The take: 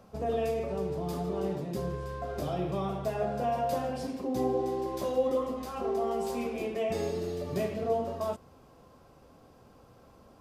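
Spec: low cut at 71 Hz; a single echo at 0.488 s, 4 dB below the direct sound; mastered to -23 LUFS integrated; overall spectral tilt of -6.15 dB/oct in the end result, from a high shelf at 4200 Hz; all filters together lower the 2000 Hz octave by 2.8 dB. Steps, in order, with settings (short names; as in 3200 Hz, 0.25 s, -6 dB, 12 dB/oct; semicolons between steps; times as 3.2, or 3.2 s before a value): HPF 71 Hz; bell 2000 Hz -5 dB; high shelf 4200 Hz +5 dB; echo 0.488 s -4 dB; gain +8.5 dB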